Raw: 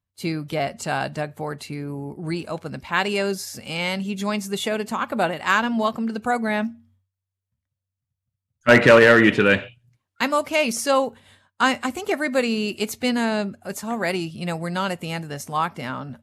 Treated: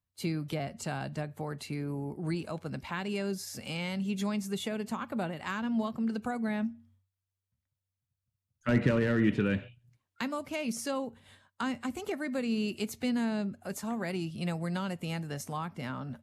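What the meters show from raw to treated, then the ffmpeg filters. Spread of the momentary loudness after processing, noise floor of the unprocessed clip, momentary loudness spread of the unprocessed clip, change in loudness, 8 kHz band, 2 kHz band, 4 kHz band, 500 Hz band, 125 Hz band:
10 LU, -85 dBFS, 14 LU, -11.5 dB, -10.5 dB, -17.5 dB, -13.5 dB, -14.5 dB, -4.5 dB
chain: -filter_complex "[0:a]acrossover=split=270[s0][s1];[s1]acompressor=threshold=0.02:ratio=3[s2];[s0][s2]amix=inputs=2:normalize=0,volume=0.631"

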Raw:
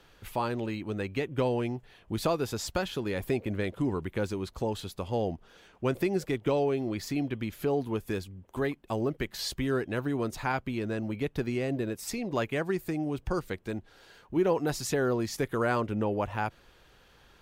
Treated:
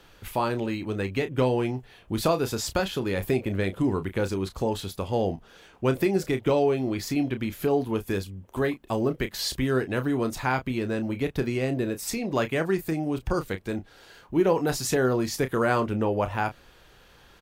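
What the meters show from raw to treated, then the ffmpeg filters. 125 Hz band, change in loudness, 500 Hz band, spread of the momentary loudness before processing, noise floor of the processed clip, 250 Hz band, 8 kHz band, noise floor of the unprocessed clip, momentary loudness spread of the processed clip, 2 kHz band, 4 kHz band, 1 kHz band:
+4.5 dB, +4.5 dB, +4.5 dB, 6 LU, -55 dBFS, +4.5 dB, +5.5 dB, -60 dBFS, 6 LU, +4.5 dB, +5.0 dB, +4.5 dB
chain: -filter_complex "[0:a]highshelf=f=10000:g=3.5,asplit=2[s0][s1];[s1]adelay=31,volume=0.316[s2];[s0][s2]amix=inputs=2:normalize=0,volume=1.58"

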